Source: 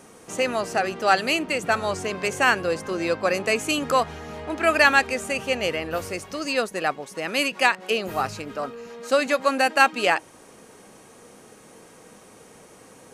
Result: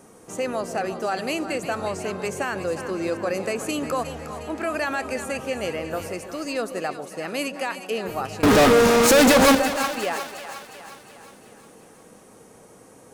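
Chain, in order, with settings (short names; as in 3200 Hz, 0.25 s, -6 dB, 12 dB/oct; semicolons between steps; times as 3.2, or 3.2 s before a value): bell 3000 Hz -7 dB 2.2 oct; limiter -17 dBFS, peak gain reduction 10.5 dB; 8.43–9.55 fuzz box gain 49 dB, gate -54 dBFS; split-band echo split 700 Hz, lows 0.145 s, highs 0.359 s, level -10 dB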